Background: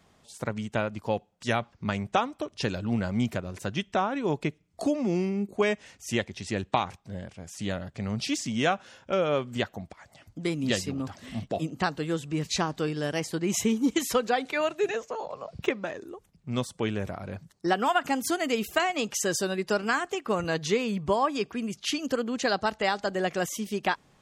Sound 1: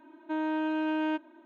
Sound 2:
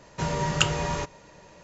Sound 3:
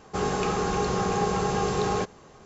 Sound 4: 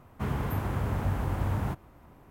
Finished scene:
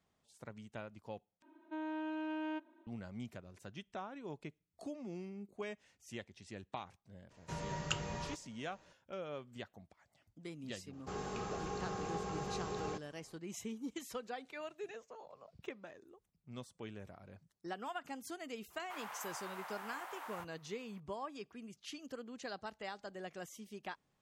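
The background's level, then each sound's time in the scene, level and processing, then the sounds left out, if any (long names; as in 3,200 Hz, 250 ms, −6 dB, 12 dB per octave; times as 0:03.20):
background −18.5 dB
0:01.42: overwrite with 1 −10.5 dB
0:07.30: mix in 2 −14.5 dB
0:10.93: mix in 3 −15.5 dB
0:18.70: mix in 4 −6.5 dB + high-pass filter 760 Hz 24 dB per octave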